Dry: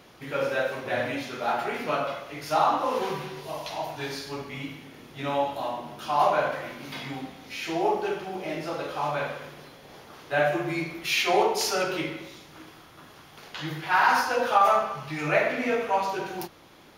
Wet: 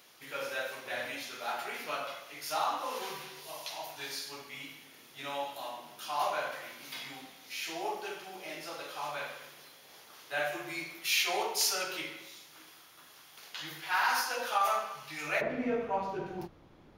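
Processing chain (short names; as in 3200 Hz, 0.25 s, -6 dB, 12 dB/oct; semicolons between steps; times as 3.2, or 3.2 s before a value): tilt +3.5 dB/oct, from 15.4 s -3 dB/oct; gain -9 dB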